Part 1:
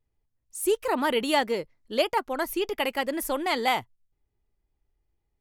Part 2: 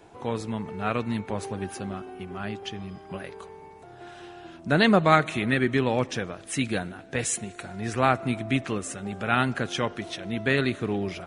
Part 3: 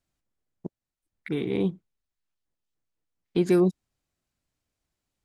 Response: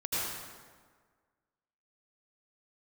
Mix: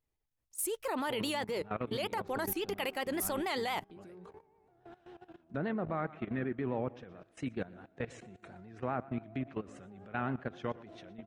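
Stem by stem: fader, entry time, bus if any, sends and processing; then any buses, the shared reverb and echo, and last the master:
+2.0 dB, 0.00 s, no send, no echo send, low-shelf EQ 250 Hz −7.5 dB
−7.0 dB, 0.85 s, no send, echo send −17 dB, treble cut that deepens with the level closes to 2,100 Hz, closed at −20 dBFS; high-pass filter 590 Hz 6 dB per octave; spectral tilt −4.5 dB per octave
−15.5 dB, 0.55 s, no send, no echo send, downward compressor, threshold −21 dBFS, peak gain reduction 5 dB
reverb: not used
echo: repeating echo 119 ms, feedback 33%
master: output level in coarse steps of 17 dB; pitch vibrato 7.3 Hz 66 cents

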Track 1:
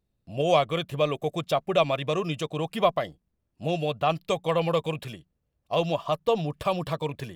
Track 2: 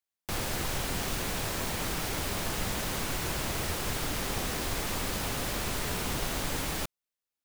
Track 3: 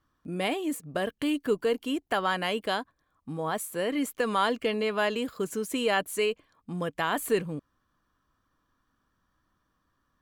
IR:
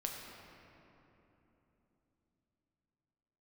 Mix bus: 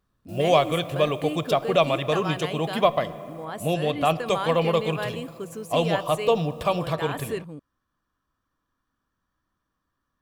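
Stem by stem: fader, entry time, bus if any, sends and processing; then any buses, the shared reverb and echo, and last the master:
+0.5 dB, 0.00 s, send −10 dB, no processing
−19.0 dB, 0.00 s, muted 0:03.45–0:04.26, send −12.5 dB, first difference; automatic ducking −17 dB, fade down 2.00 s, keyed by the first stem
−4.5 dB, 0.00 s, no send, no processing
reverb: on, RT60 3.4 s, pre-delay 6 ms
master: no processing

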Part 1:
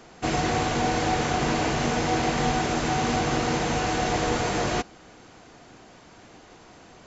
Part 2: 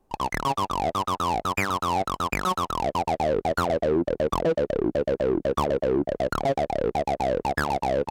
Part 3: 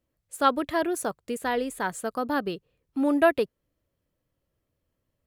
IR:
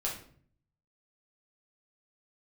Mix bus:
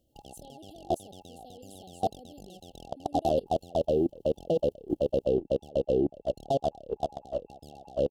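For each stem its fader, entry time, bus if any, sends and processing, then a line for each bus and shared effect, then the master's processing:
muted
−0.5 dB, 0.05 s, no send, no processing
−10.0 dB, 0.00 s, no send, envelope flattener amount 50%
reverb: not used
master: brick-wall band-stop 830–2,700 Hz; output level in coarse steps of 24 dB

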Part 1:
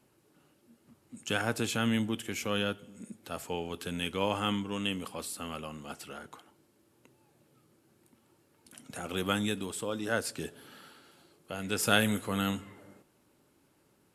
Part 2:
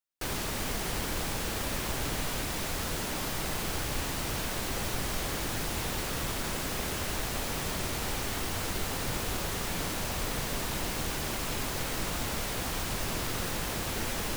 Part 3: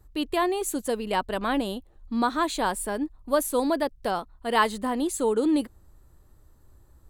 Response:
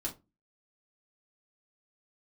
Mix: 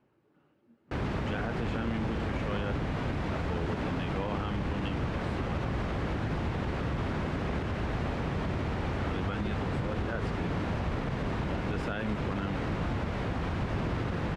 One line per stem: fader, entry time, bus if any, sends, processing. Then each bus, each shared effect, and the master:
−1.5 dB, 0.00 s, no send, no processing
+0.5 dB, 0.70 s, no send, high-pass filter 62 Hz 12 dB per octave; low-shelf EQ 290 Hz +9.5 dB
muted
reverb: not used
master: low-pass filter 2,100 Hz 12 dB per octave; brickwall limiter −23 dBFS, peak gain reduction 11.5 dB

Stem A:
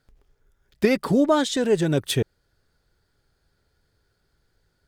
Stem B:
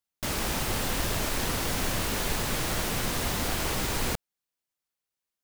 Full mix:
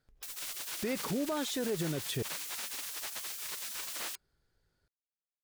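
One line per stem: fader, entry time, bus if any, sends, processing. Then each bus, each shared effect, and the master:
−8.0 dB, 0.00 s, no send, no processing
−5.0 dB, 0.00 s, no send, gate on every frequency bin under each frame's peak −20 dB weak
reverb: not used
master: brickwall limiter −25.5 dBFS, peak gain reduction 11 dB

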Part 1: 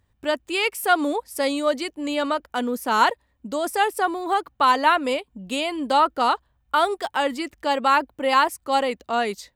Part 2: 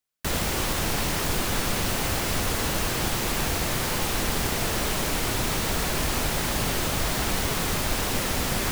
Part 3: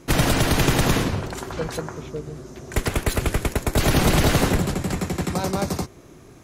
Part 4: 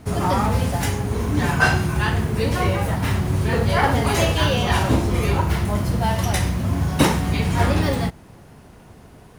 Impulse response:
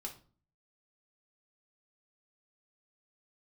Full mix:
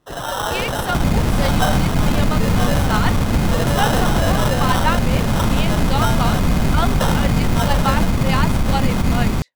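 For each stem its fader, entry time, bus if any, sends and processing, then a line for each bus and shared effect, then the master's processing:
−10.5 dB, 0.00 s, no bus, no send, meter weighting curve A; rotating-speaker cabinet horn 6.7 Hz
−8.5 dB, 0.70 s, bus A, no send, low shelf with overshoot 310 Hz +11.5 dB, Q 1.5
−2.0 dB, 0.00 s, bus A, no send, guitar amp tone stack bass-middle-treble 5-5-5
+3.0 dB, 0.00 s, bus A, no send, low-pass filter 1,200 Hz 12 dB per octave; dead-zone distortion −33 dBFS; Butterworth high-pass 450 Hz 96 dB per octave; automatic ducking −9 dB, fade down 0.80 s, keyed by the first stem
bus A: 0.0 dB, sample-rate reduction 2,300 Hz, jitter 0%; brickwall limiter −18.5 dBFS, peak gain reduction 5.5 dB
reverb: not used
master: automatic gain control gain up to 11 dB

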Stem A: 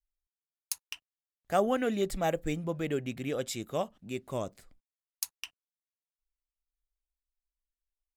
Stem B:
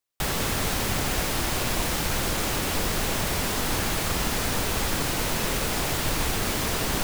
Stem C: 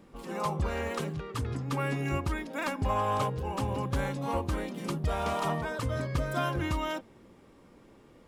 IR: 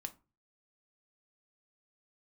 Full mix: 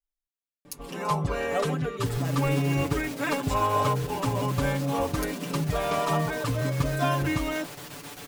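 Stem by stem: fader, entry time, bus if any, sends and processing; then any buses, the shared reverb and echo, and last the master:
−7.5 dB, 0.00 s, no send, no processing
−16.5 dB, 1.85 s, no send, high-pass filter 130 Hz; square-wave tremolo 7.6 Hz, depth 60%, duty 80%
+1.5 dB, 0.65 s, no send, no processing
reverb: not used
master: comb filter 6.9 ms, depth 97%

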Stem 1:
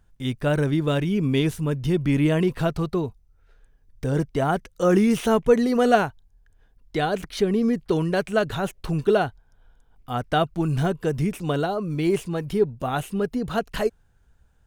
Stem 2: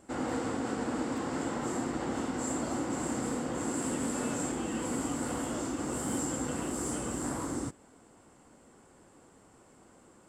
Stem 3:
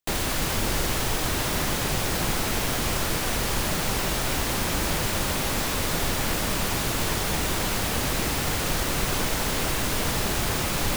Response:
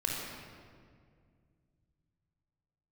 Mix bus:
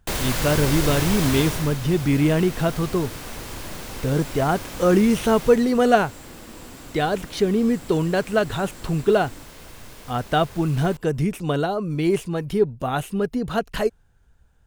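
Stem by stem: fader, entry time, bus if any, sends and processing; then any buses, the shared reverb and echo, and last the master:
+1.5 dB, 0.00 s, no send, no processing
−8.5 dB, 1.75 s, no send, brickwall limiter −28 dBFS, peak gain reduction 6.5 dB
0:01.37 −1 dB → 0:01.78 −11.5 dB → 0:05.45 −11.5 dB → 0:05.66 −19.5 dB, 0.00 s, send −13.5 dB, no processing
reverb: on, RT60 2.1 s, pre-delay 26 ms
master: no processing

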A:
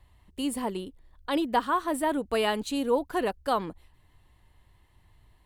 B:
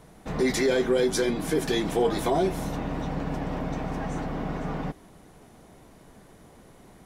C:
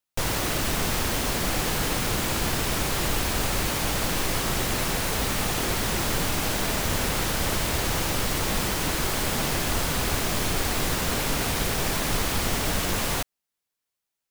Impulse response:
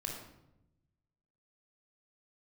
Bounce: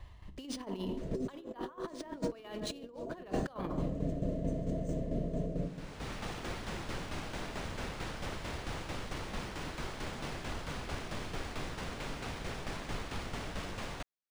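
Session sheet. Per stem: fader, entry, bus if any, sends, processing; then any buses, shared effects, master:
+2.5 dB, 0.00 s, send −6 dB, downward compressor 12 to 1, threshold −27 dBFS, peak gain reduction 9 dB
−11.0 dB, 0.75 s, send −4 dB, brick-wall band-stop 700–6,000 Hz; speech leveller within 3 dB 2 s
−14.0 dB, 0.80 s, no send, high-shelf EQ 6,800 Hz −10.5 dB; automatic ducking −23 dB, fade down 1.60 s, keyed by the first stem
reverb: on, RT60 0.85 s, pre-delay 20 ms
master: compressor whose output falls as the input rises −33 dBFS, ratio −0.5; shaped tremolo saw down 4.5 Hz, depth 55%; linearly interpolated sample-rate reduction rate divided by 3×

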